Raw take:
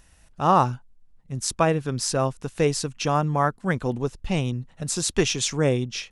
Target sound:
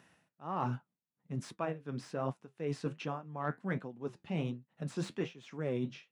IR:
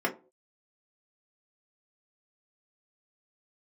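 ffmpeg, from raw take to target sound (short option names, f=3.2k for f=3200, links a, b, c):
-filter_complex "[0:a]acrossover=split=3000[a][b];[b]asoftclip=type=hard:threshold=-22.5dB[c];[a][c]amix=inputs=2:normalize=0,acrossover=split=3200[d][e];[e]acompressor=threshold=-36dB:ratio=4:attack=1:release=60[f];[d][f]amix=inputs=2:normalize=0,tremolo=f=1.4:d=0.93,flanger=delay=7.4:depth=6.6:regen=-64:speed=1.3:shape=triangular,aeval=exprs='0.224*(cos(1*acos(clip(val(0)/0.224,-1,1)))-cos(1*PI/2))+0.0126*(cos(5*acos(clip(val(0)/0.224,-1,1)))-cos(5*PI/2))':c=same,highpass=f=150:w=0.5412,highpass=f=150:w=1.3066,bass=f=250:g=3,treble=f=4k:g=-13,areverse,acompressor=threshold=-33dB:ratio=6,areverse,volume=1dB"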